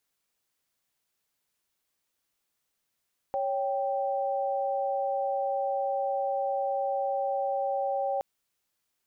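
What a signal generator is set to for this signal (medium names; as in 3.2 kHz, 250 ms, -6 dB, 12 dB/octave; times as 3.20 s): chord C#5/G5 sine, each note -29 dBFS 4.87 s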